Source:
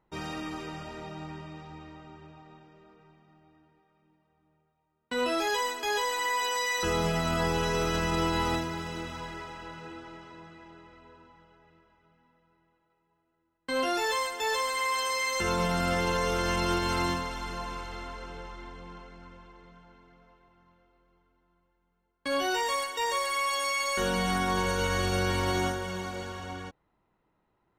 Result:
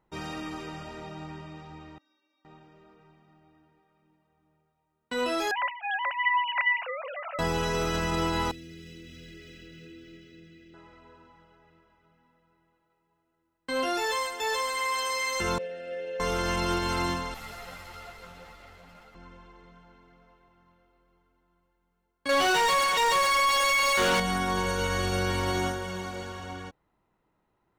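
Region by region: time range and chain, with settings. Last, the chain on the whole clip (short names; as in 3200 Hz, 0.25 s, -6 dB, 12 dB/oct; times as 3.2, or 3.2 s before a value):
1.98–2.45 brick-wall FIR high-pass 190 Hz + metallic resonator 280 Hz, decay 0.59 s, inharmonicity 0.008
5.51–7.39 sine-wave speech + HPF 460 Hz
8.51–10.74 Chebyshev band-stop 370–2400 Hz + compressor 4:1, threshold -43 dBFS + decimation joined by straight lines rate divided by 2×
15.58–16.2 vowel filter e + bell 870 Hz -3 dB 0.39 oct
17.34–19.15 minimum comb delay 1.5 ms + bell 13000 Hz +11 dB 0.54 oct + ensemble effect
22.29–24.2 G.711 law mismatch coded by mu + overdrive pedal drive 24 dB, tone 4400 Hz, clips at -17.5 dBFS
whole clip: dry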